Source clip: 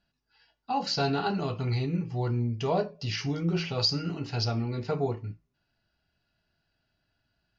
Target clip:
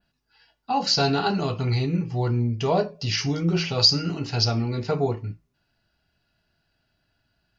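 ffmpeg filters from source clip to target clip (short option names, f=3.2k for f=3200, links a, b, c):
-af "adynamicequalizer=threshold=0.00501:dfrequency=6200:dqfactor=0.98:tfrequency=6200:tqfactor=0.98:attack=5:release=100:ratio=0.375:range=3:mode=boostabove:tftype=bell,volume=5dB"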